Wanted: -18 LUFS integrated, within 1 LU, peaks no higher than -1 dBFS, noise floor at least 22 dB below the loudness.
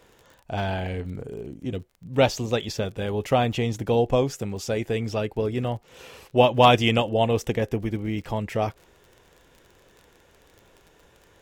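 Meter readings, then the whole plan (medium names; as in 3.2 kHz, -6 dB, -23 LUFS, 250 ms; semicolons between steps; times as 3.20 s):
tick rate 32 per s; loudness -24.5 LUFS; peak level -5.0 dBFS; loudness target -18.0 LUFS
-> de-click; trim +6.5 dB; peak limiter -1 dBFS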